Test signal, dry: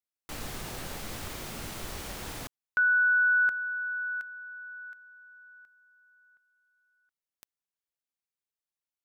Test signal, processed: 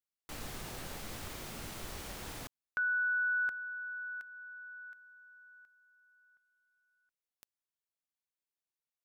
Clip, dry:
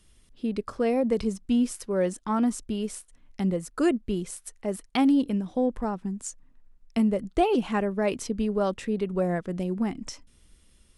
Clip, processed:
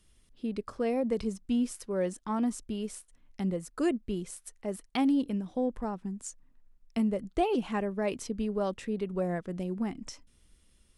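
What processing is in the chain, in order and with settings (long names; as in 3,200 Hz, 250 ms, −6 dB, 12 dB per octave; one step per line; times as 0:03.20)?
dynamic equaliser 1,400 Hz, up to −6 dB, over −44 dBFS, Q 7.5
level −5 dB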